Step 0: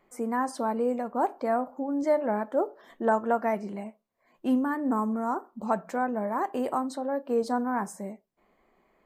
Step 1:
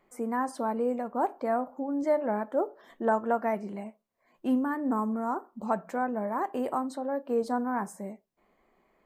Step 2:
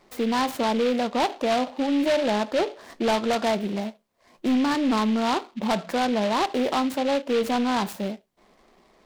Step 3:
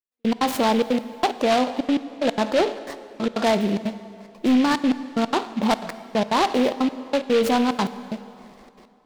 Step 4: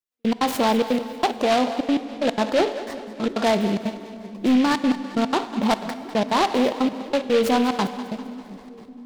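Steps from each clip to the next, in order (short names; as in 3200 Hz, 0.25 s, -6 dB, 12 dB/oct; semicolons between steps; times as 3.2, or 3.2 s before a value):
dynamic EQ 5400 Hz, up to -4 dB, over -53 dBFS, Q 0.88; gain -1.5 dB
in parallel at +1 dB: limiter -26 dBFS, peak gain reduction 11.5 dB; on the sum: sine folder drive 5 dB, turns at -12 dBFS; noise-modulated delay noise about 2500 Hz, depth 0.063 ms; gain -5.5 dB
in parallel at +3 dB: limiter -25.5 dBFS, peak gain reduction 8 dB; on the sum: step gate "...x.xxxxx.x" 183 bpm -60 dB; plate-style reverb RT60 2.7 s, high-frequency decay 0.8×, DRR 13 dB
split-band echo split 360 Hz, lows 0.695 s, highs 0.198 s, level -14 dB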